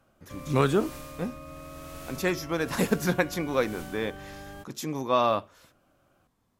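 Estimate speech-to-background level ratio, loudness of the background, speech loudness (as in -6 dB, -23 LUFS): 14.5 dB, -43.0 LUFS, -28.5 LUFS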